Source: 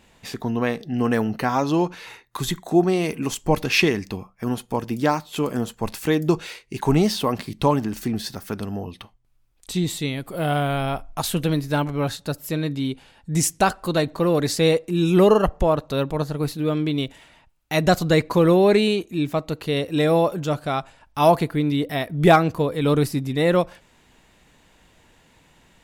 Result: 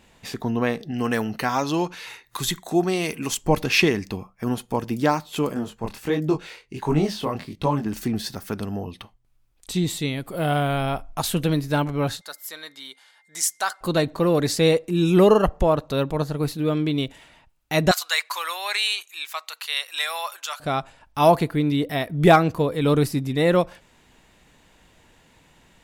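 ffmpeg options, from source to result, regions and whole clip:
ffmpeg -i in.wav -filter_complex "[0:a]asettb=1/sr,asplit=3[link_01][link_02][link_03];[link_01]atrim=end=0.914[link_04];[link_02]atrim=start=0.91:end=3.37,asetpts=PTS-STARTPTS,afade=type=in:duration=0.004:curve=qsin,afade=type=out:start_time=2.456:duration=0.004:curve=qsin,tiltshelf=frequency=1300:gain=-4,acompressor=mode=upward:threshold=-45dB:ratio=2.5:attack=3.2:release=140:knee=2.83:detection=peak[link_05];[link_03]atrim=start=3.366[link_06];[link_04][link_05]acrossfade=duration=0.004:curve1=hsin:curve2=qsin[link_07];[link_07][link_06]acrossfade=duration=0.004:curve1=qsin:curve2=hsin,asettb=1/sr,asplit=3[link_08][link_09][link_10];[link_08]atrim=end=5.544[link_11];[link_09]atrim=start=5.54:end=7.86,asetpts=PTS-STARTPTS,afade=type=in:duration=0.004:curve=qsin,afade=type=out:start_time=2.316:duration=0.004:curve=qsin,highshelf=frequency=4800:gain=-6.5,flanger=delay=19.5:depth=6.9:speed=1.4[link_12];[link_10]atrim=start=7.856[link_13];[link_11][link_12]acrossfade=duration=0.004:curve1=hsin:curve2=qsin[link_14];[link_14][link_13]acrossfade=duration=0.004:curve1=qsin:curve2=hsin,asettb=1/sr,asplit=3[link_15][link_16][link_17];[link_15]atrim=end=12.214[link_18];[link_16]atrim=start=12.21:end=13.81,asetpts=PTS-STARTPTS,afade=type=in:duration=0.004:curve=qsin,afade=type=out:start_time=1.596:duration=0.004:curve=qsin,highpass=1200,equalizer=frequency=2600:width=5.9:gain=-12.5,aeval=exprs='val(0)+0.001*sin(2*PI*2100*n/s)':channel_layout=same[link_19];[link_17]atrim=start=13.806[link_20];[link_18][link_19]acrossfade=duration=0.004:curve1=hsin:curve2=qsin[link_21];[link_21][link_20]acrossfade=duration=0.004:curve1=qsin:curve2=hsin,asettb=1/sr,asplit=3[link_22][link_23][link_24];[link_22]atrim=end=17.914[link_25];[link_23]atrim=start=17.91:end=20.6,asetpts=PTS-STARTPTS,afade=type=in:duration=0.004:curve=qsin,afade=type=out:start_time=2.686:duration=0.004:curve=qsin,highpass=frequency=1000:width=0.5412,highpass=frequency=1000:width=1.3066,highshelf=frequency=2300:gain=7.5[link_26];[link_24]atrim=start=20.596[link_27];[link_25][link_26]acrossfade=duration=0.004:curve1=hsin:curve2=qsin[link_28];[link_28][link_27]acrossfade=duration=0.004:curve1=qsin:curve2=hsin" out.wav

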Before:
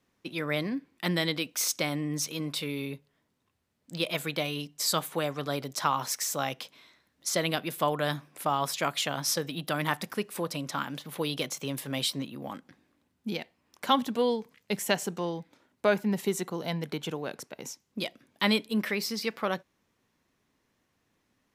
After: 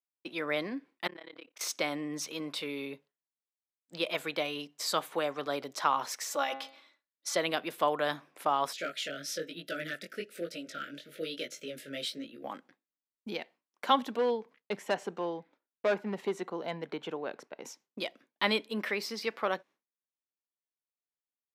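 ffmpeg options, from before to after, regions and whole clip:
ffmpeg -i in.wav -filter_complex "[0:a]asettb=1/sr,asplit=3[link_01][link_02][link_03];[link_01]atrim=end=1.074[link_04];[link_02]atrim=start=1.07:end=1.61,asetpts=PTS-STARTPTS,afade=type=in:duration=0.004:curve=qsin,afade=type=out:start_time=0.536:duration=0.004:curve=qsin,bass=frequency=250:gain=-11,treble=frequency=4000:gain=-14,acompressor=threshold=-37dB:ratio=12:attack=3.2:release=140:knee=1:detection=peak,tremolo=f=34:d=0.974[link_05];[link_03]atrim=start=1.606[link_06];[link_04][link_05]acrossfade=duration=0.004:curve1=hsin:curve2=qsin[link_07];[link_07][link_06]acrossfade=duration=0.004:curve1=qsin:curve2=hsin,asettb=1/sr,asplit=3[link_08][link_09][link_10];[link_08]atrim=end=6.304[link_11];[link_09]atrim=start=6.3:end=7.36,asetpts=PTS-STARTPTS,afade=type=in:duration=0.004:curve=qsin,afade=type=out:start_time=1.056:duration=0.004:curve=qsin,equalizer=frequency=160:width=0.64:gain=-5,aecho=1:1:3.5:0.75,atrim=end_sample=46746,bandreject=frequency=134.5:width_type=h:width=4,bandreject=frequency=269:width_type=h:width=4,bandreject=frequency=403.5:width_type=h:width=4,bandreject=frequency=538:width_type=h:width=4,bandreject=frequency=672.5:width_type=h:width=4,bandreject=frequency=807:width_type=h:width=4,bandreject=frequency=941.5:width_type=h:width=4,bandreject=frequency=1076:width_type=h:width=4,bandreject=frequency=1210.5:width_type=h:width=4,bandreject=frequency=1345:width_type=h:width=4,bandreject=frequency=1479.5:width_type=h:width=4,bandreject=frequency=1614:width_type=h:width=4,bandreject=frequency=1748.5:width_type=h:width=4,bandreject=frequency=1883:width_type=h:width=4,bandreject=frequency=2017.5:width_type=h:width=4,bandreject=frequency=2152:width_type=h:width=4,bandreject=frequency=2286.5:width_type=h:width=4,bandreject=frequency=2421:width_type=h:width=4,bandreject=frequency=2555.5:width_type=h:width=4,bandreject=frequency=2690:width_type=h:width=4,bandreject=frequency=2824.5:width_type=h:width=4,bandreject=frequency=2959:width_type=h:width=4,bandreject=frequency=3093.5:width_type=h:width=4,bandreject=frequency=3228:width_type=h:width=4,bandreject=frequency=3362.5:width_type=h:width=4,bandreject=frequency=3497:width_type=h:width=4,bandreject=frequency=3631.5:width_type=h:width=4,bandreject=frequency=3766:width_type=h:width=4,bandreject=frequency=3900.5:width_type=h:width=4,bandreject=frequency=4035:width_type=h:width=4,bandreject=frequency=4169.5:width_type=h:width=4,bandreject=frequency=4304:width_type=h:width=4,bandreject=frequency=4438.5:width_type=h:width=4,bandreject=frequency=4573:width_type=h:width=4,bandreject=frequency=4707.5:width_type=h:width=4,bandreject=frequency=4842:width_type=h:width=4,bandreject=frequency=4976.5:width_type=h:width=4[link_12];[link_10]atrim=start=7.356[link_13];[link_11][link_12]acrossfade=duration=0.004:curve1=hsin:curve2=qsin[link_14];[link_14][link_13]acrossfade=duration=0.004:curve1=qsin:curve2=hsin,asettb=1/sr,asplit=3[link_15][link_16][link_17];[link_15]atrim=end=8.734[link_18];[link_16]atrim=start=8.73:end=12.44,asetpts=PTS-STARTPTS,afade=type=in:duration=0.004:curve=qsin,afade=type=out:start_time=3.706:duration=0.004:curve=qsin,flanger=delay=17:depth=4.4:speed=1.1,asoftclip=type=hard:threshold=-23dB,asuperstop=centerf=930:order=12:qfactor=1.4[link_19];[link_17]atrim=start=12.436[link_20];[link_18][link_19]acrossfade=duration=0.004:curve1=hsin:curve2=qsin[link_21];[link_21][link_20]acrossfade=duration=0.004:curve1=qsin:curve2=hsin,asettb=1/sr,asplit=3[link_22][link_23][link_24];[link_22]atrim=end=14.164[link_25];[link_23]atrim=start=14.16:end=17.65,asetpts=PTS-STARTPTS,afade=type=in:duration=0.004:curve=qsin,afade=type=out:start_time=3.486:duration=0.004:curve=qsin,lowpass=frequency=2600:poles=1,asoftclip=type=hard:threshold=-22dB[link_26];[link_24]atrim=start=17.646[link_27];[link_25][link_26]acrossfade=duration=0.004:curve1=hsin:curve2=qsin[link_28];[link_28][link_27]acrossfade=duration=0.004:curve1=qsin:curve2=hsin,highpass=330,agate=range=-33dB:threshold=-50dB:ratio=3:detection=peak,highshelf=frequency=5800:gain=-12" out.wav

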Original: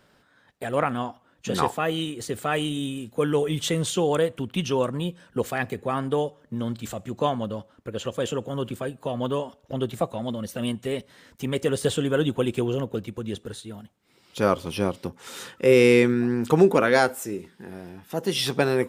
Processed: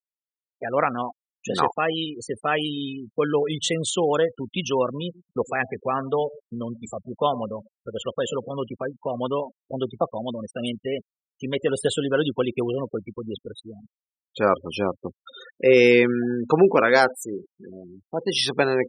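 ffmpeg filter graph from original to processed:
ffmpeg -i in.wav -filter_complex "[0:a]asettb=1/sr,asplit=3[link_01][link_02][link_03];[link_01]atrim=end=5.014[link_04];[link_02]atrim=start=5.01:end=8.58,asetpts=PTS-STARTPTS,afade=type=in:duration=0.004:curve=qsin,afade=type=out:start_time=3.566:duration=0.004:curve=qsin,bandreject=frequency=310:width=7.1,asplit=2[link_05][link_06];[link_06]adelay=117,lowpass=frequency=840:poles=1,volume=-16dB,asplit=2[link_07][link_08];[link_08]adelay=117,lowpass=frequency=840:poles=1,volume=0.31,asplit=2[link_09][link_10];[link_10]adelay=117,lowpass=frequency=840:poles=1,volume=0.31[link_11];[link_05][link_07][link_09][link_11]amix=inputs=4:normalize=0,atrim=end_sample=157437[link_12];[link_03]atrim=start=8.576[link_13];[link_04][link_12]acrossfade=duration=0.004:curve1=hsin:curve2=qsin[link_14];[link_14][link_13]acrossfade=duration=0.004:curve1=qsin:curve2=hsin,agate=range=-33dB:threshold=-49dB:ratio=3:detection=peak,afftfilt=real='re*gte(hypot(re,im),0.0316)':imag='im*gte(hypot(re,im),0.0316)':win_size=1024:overlap=0.75,lowshelf=frequency=220:gain=-11,volume=3.5dB" out.wav

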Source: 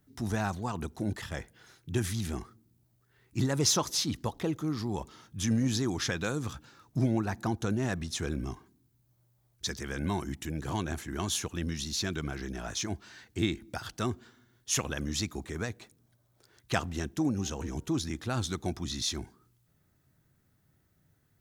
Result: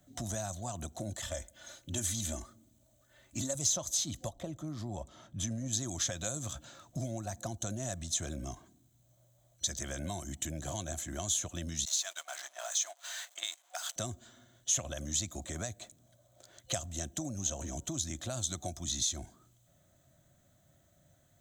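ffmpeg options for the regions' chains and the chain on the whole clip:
ffmpeg -i in.wav -filter_complex "[0:a]asettb=1/sr,asplit=3[link_01][link_02][link_03];[link_01]atrim=end=1.234[link_04];[link_02]atrim=start=1.23:end=3.55,asetpts=PTS-STARTPTS,afade=type=in:duration=0.004:curve=qsin,afade=type=out:start_time=2.316:duration=0.004:curve=qsin,bandreject=frequency=330:width=8.5,aecho=1:1:3.4:0.66,atrim=end_sample=102312[link_05];[link_03]atrim=start=3.546[link_06];[link_04][link_05]acrossfade=duration=0.004:curve1=hsin:curve2=qsin[link_07];[link_07][link_06]acrossfade=duration=0.004:curve1=qsin:curve2=hsin,asettb=1/sr,asplit=3[link_08][link_09][link_10];[link_08]atrim=end=4.294[link_11];[link_09]atrim=start=4.29:end=5.73,asetpts=PTS-STARTPTS,afade=type=in:duration=0.004:curve=qsin,afade=type=out:start_time=1.436:duration=0.004:curve=qsin,highshelf=frequency=2700:gain=-10.5,bandreject=frequency=6600:width=18[link_12];[link_10]atrim=start=5.726[link_13];[link_11][link_12]acrossfade=duration=0.004:curve1=hsin:curve2=qsin[link_14];[link_14][link_13]acrossfade=duration=0.004:curve1=qsin:curve2=hsin,asettb=1/sr,asplit=3[link_15][link_16][link_17];[link_15]atrim=end=11.854[link_18];[link_16]atrim=start=11.85:end=13.96,asetpts=PTS-STARTPTS,afade=type=in:duration=0.004:curve=qsin,afade=type=out:start_time=2.106:duration=0.004:curve=qsin,aeval=exprs='val(0)+0.5*0.00891*sgn(val(0))':channel_layout=same,highpass=frequency=810:width=0.5412,highpass=frequency=810:width=1.3066,agate=range=-16dB:threshold=-45dB:ratio=16:release=100:detection=peak[link_19];[link_17]atrim=start=13.956[link_20];[link_18][link_19]acrossfade=duration=0.004:curve1=hsin:curve2=qsin[link_21];[link_21][link_20]acrossfade=duration=0.004:curve1=qsin:curve2=hsin,superequalizer=7b=0.562:8b=3.98:13b=2:15b=3.16,acrossover=split=100|5300[link_22][link_23][link_24];[link_22]acompressor=threshold=-45dB:ratio=4[link_25];[link_23]acompressor=threshold=-42dB:ratio=4[link_26];[link_24]acompressor=threshold=-33dB:ratio=4[link_27];[link_25][link_26][link_27]amix=inputs=3:normalize=0,volume=1.5dB" out.wav

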